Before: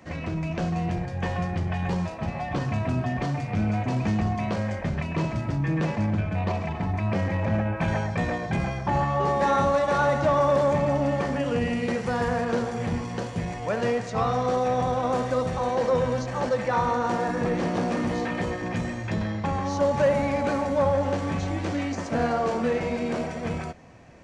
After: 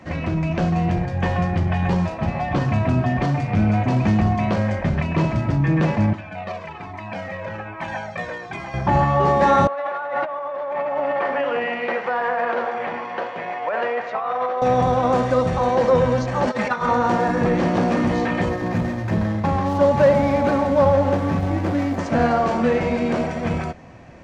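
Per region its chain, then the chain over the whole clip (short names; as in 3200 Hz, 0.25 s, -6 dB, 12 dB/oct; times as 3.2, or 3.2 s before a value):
6.13–8.74 HPF 620 Hz 6 dB/oct + cascading flanger falling 1.2 Hz
9.67–14.62 Butterworth band-pass 1200 Hz, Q 0.56 + negative-ratio compressor -30 dBFS
16.47–16.89 low shelf 170 Hz -12 dB + negative-ratio compressor -27 dBFS, ratio -0.5 + comb 4.8 ms, depth 64%
18.49–21.99 median filter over 15 samples + HPF 49 Hz
whole clip: LPF 3800 Hz 6 dB/oct; notch 450 Hz, Q 14; gain +7 dB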